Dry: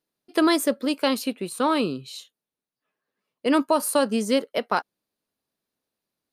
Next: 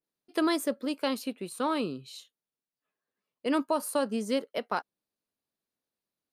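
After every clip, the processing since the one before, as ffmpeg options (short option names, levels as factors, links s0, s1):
-af "adynamicequalizer=threshold=0.0178:dfrequency=1700:dqfactor=0.7:tfrequency=1700:tqfactor=0.7:attack=5:release=100:ratio=0.375:range=2:mode=cutabove:tftype=highshelf,volume=0.447"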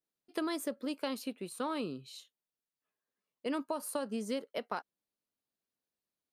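-af "acompressor=threshold=0.0447:ratio=6,volume=0.631"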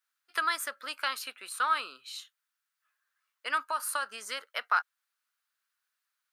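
-af "highpass=f=1400:t=q:w=3.4,volume=2.24"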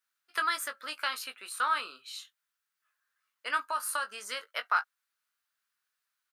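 -filter_complex "[0:a]asplit=2[s0][s1];[s1]adelay=20,volume=0.398[s2];[s0][s2]amix=inputs=2:normalize=0,volume=0.891"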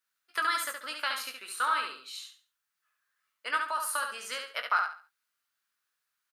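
-af "aecho=1:1:70|140|210|280:0.562|0.157|0.0441|0.0123"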